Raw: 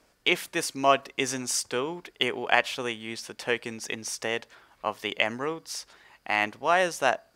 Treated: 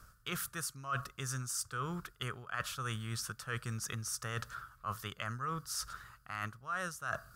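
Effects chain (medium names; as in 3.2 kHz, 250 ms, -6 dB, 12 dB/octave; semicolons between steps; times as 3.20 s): FFT filter 130 Hz 0 dB, 280 Hz -24 dB, 550 Hz -23 dB, 890 Hz -25 dB, 1.3 kHz 0 dB, 2.1 kHz -24 dB, 14 kHz -5 dB; reverse; compression 8:1, threshold -53 dBFS, peak gain reduction 24.5 dB; reverse; trim +17 dB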